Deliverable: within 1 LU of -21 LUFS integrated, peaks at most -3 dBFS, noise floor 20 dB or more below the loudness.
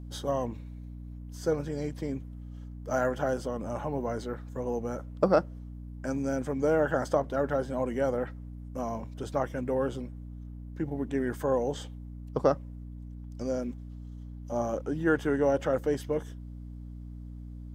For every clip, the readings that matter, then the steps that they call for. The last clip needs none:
hum 60 Hz; harmonics up to 300 Hz; hum level -39 dBFS; loudness -31.0 LUFS; peak -10.0 dBFS; loudness target -21.0 LUFS
-> de-hum 60 Hz, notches 5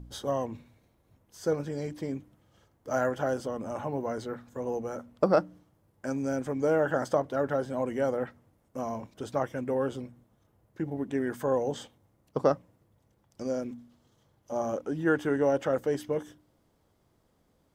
hum none; loudness -31.0 LUFS; peak -10.5 dBFS; loudness target -21.0 LUFS
-> gain +10 dB; limiter -3 dBFS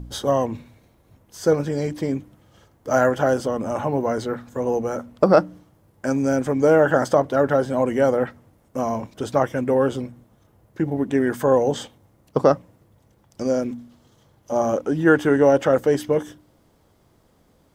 loudness -21.5 LUFS; peak -3.0 dBFS; noise floor -60 dBFS

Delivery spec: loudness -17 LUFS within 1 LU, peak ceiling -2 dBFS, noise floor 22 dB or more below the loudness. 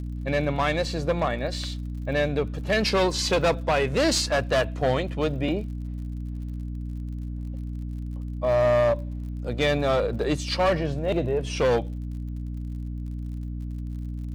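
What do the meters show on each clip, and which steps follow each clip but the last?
ticks 52/s; hum 60 Hz; harmonics up to 300 Hz; hum level -30 dBFS; loudness -26.5 LUFS; peak -11.5 dBFS; loudness target -17.0 LUFS
-> de-click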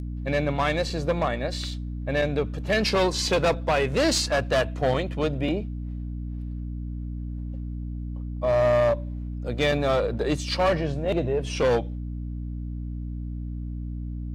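ticks 0.070/s; hum 60 Hz; harmonics up to 300 Hz; hum level -30 dBFS
-> de-hum 60 Hz, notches 5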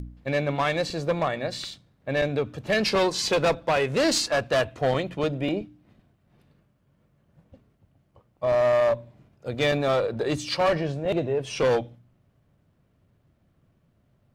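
hum none; loudness -25.0 LUFS; peak -11.5 dBFS; loudness target -17.0 LUFS
-> gain +8 dB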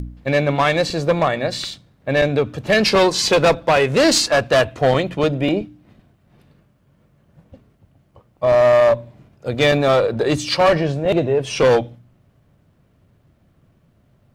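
loudness -17.0 LUFS; peak -3.5 dBFS; noise floor -59 dBFS

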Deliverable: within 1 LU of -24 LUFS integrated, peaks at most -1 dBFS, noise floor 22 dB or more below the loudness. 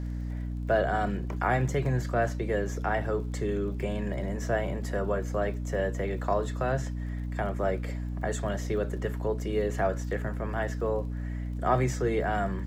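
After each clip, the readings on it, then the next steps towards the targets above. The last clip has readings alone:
ticks 27/s; hum 60 Hz; harmonics up to 300 Hz; hum level -31 dBFS; loudness -30.0 LUFS; peak -12.5 dBFS; loudness target -24.0 LUFS
-> de-click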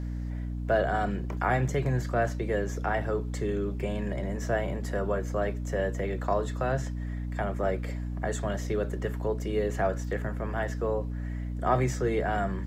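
ticks 0/s; hum 60 Hz; harmonics up to 300 Hz; hum level -31 dBFS
-> notches 60/120/180/240/300 Hz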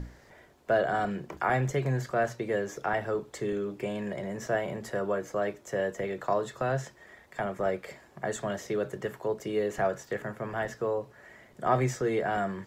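hum none; loudness -31.5 LUFS; peak -12.0 dBFS; loudness target -24.0 LUFS
-> gain +7.5 dB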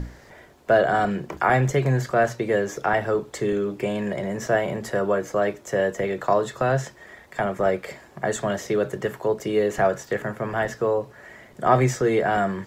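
loudness -24.0 LUFS; peak -4.5 dBFS; noise floor -50 dBFS

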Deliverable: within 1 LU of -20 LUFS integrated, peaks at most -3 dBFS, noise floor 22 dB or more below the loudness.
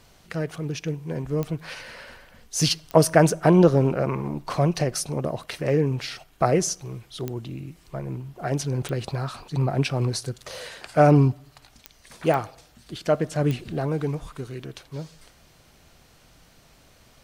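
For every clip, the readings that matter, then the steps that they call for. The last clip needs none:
clicks 7; loudness -24.0 LUFS; peak -2.0 dBFS; loudness target -20.0 LUFS
-> de-click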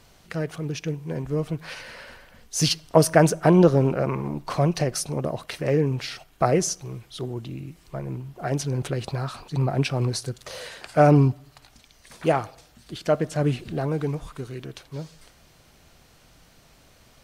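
clicks 0; loudness -24.0 LUFS; peak -2.0 dBFS; loudness target -20.0 LUFS
-> gain +4 dB; limiter -3 dBFS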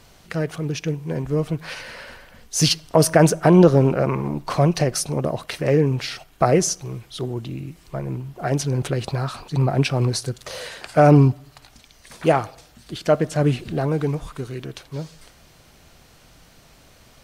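loudness -20.5 LUFS; peak -3.0 dBFS; noise floor -52 dBFS

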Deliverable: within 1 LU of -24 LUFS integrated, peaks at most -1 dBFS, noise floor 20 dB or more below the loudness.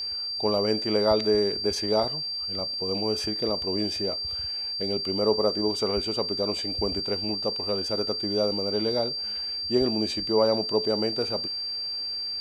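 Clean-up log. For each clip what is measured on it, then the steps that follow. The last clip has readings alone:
steady tone 4700 Hz; tone level -29 dBFS; loudness -26.0 LUFS; peak -9.0 dBFS; loudness target -24.0 LUFS
-> notch 4700 Hz, Q 30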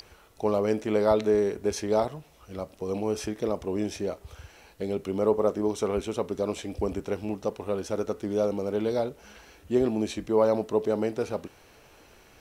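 steady tone none; loudness -28.0 LUFS; peak -10.0 dBFS; loudness target -24.0 LUFS
-> gain +4 dB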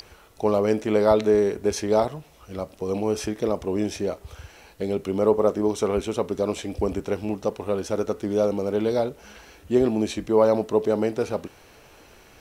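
loudness -24.0 LUFS; peak -6.0 dBFS; noise floor -52 dBFS

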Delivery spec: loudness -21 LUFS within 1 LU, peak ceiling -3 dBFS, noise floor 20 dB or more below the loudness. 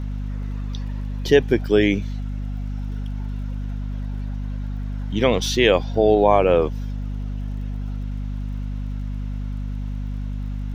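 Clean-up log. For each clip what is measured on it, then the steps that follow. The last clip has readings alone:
ticks 40/s; hum 50 Hz; harmonics up to 250 Hz; hum level -24 dBFS; loudness -23.5 LUFS; peak -1.5 dBFS; loudness target -21.0 LUFS
-> de-click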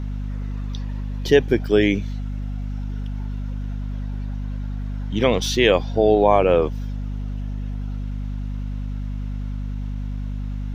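ticks 0.093/s; hum 50 Hz; harmonics up to 250 Hz; hum level -24 dBFS
-> de-hum 50 Hz, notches 5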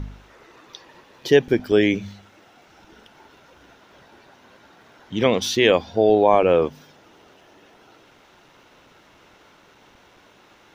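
hum none; loudness -19.0 LUFS; peak -2.0 dBFS; loudness target -21.0 LUFS
-> gain -2 dB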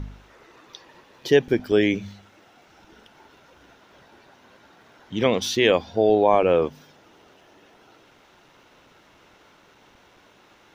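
loudness -21.0 LUFS; peak -4.0 dBFS; noise floor -56 dBFS

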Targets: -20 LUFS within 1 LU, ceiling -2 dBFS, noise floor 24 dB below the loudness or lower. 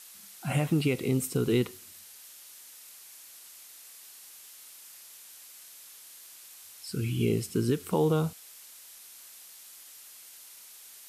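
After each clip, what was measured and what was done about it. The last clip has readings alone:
noise floor -50 dBFS; noise floor target -53 dBFS; loudness -29.0 LUFS; peak -15.5 dBFS; loudness target -20.0 LUFS
-> noise print and reduce 6 dB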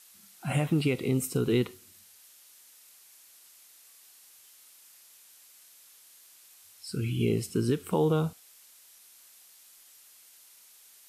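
noise floor -56 dBFS; loudness -29.0 LUFS; peak -15.5 dBFS; loudness target -20.0 LUFS
-> gain +9 dB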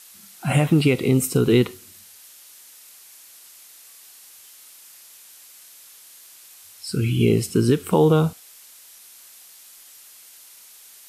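loudness -20.0 LUFS; peak -6.5 dBFS; noise floor -47 dBFS

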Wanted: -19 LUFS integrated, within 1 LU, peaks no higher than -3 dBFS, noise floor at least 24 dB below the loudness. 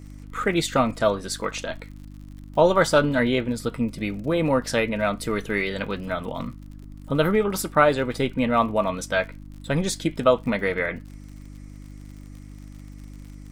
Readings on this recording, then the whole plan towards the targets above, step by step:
ticks 57/s; hum 50 Hz; harmonics up to 300 Hz; hum level -39 dBFS; loudness -23.5 LUFS; peak -4.0 dBFS; loudness target -19.0 LUFS
-> de-click; de-hum 50 Hz, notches 6; gain +4.5 dB; limiter -3 dBFS

